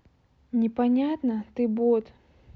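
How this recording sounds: noise floor -64 dBFS; spectral tilt -5.5 dB/oct

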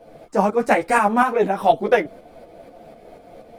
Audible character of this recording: tremolo saw up 4.1 Hz, depth 55%; a shimmering, thickened sound

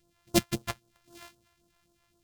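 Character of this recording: a buzz of ramps at a fixed pitch in blocks of 128 samples; phasing stages 2, 3.8 Hz, lowest notch 220–2100 Hz; AAC

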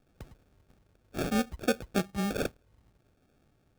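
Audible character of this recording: phasing stages 2, 0.69 Hz, lowest notch 320–4000 Hz; aliases and images of a low sample rate 1000 Hz, jitter 0%

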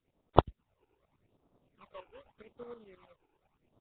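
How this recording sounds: aliases and images of a low sample rate 1700 Hz, jitter 20%; tremolo saw up 9.5 Hz, depth 80%; phasing stages 12, 0.84 Hz, lowest notch 190–2700 Hz; Nellymoser

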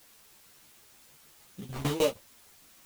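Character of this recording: aliases and images of a low sample rate 3400 Hz, jitter 20%; tremolo saw down 6.5 Hz, depth 95%; a quantiser's noise floor 10-bit, dither triangular; a shimmering, thickened sound

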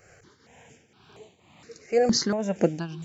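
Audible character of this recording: tremolo triangle 2 Hz, depth 80%; notches that jump at a steady rate 4.3 Hz 970–5200 Hz

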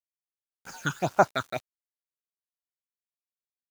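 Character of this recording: phasing stages 8, 1.9 Hz, lowest notch 610–3800 Hz; a quantiser's noise floor 8-bit, dither none

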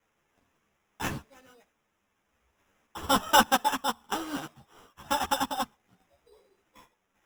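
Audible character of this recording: a quantiser's noise floor 12-bit, dither triangular; random-step tremolo; aliases and images of a low sample rate 4400 Hz, jitter 0%; a shimmering, thickened sound

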